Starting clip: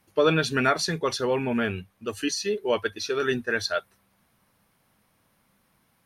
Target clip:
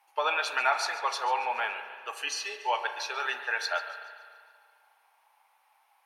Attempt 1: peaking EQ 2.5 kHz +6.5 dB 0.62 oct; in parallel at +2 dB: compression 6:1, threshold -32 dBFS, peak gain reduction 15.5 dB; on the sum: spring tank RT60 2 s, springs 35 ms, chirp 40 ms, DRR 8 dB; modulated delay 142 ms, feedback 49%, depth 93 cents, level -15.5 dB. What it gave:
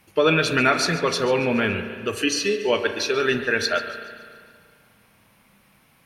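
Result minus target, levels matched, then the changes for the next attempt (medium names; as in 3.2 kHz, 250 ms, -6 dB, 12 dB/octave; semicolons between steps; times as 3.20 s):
1 kHz band -7.0 dB
add first: ladder high-pass 790 Hz, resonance 80%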